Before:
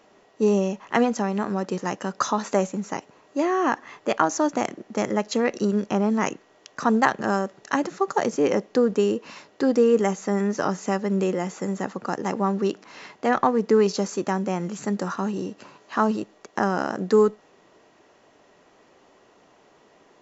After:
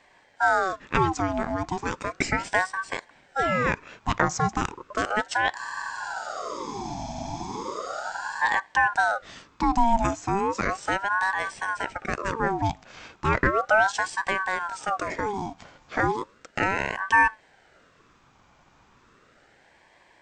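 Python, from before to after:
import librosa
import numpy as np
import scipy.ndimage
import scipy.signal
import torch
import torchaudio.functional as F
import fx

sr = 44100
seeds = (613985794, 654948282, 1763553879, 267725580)

y = fx.spec_freeze(x, sr, seeds[0], at_s=5.59, hold_s=2.82)
y = fx.ring_lfo(y, sr, carrier_hz=900.0, swing_pct=50, hz=0.35)
y = y * librosa.db_to_amplitude(1.0)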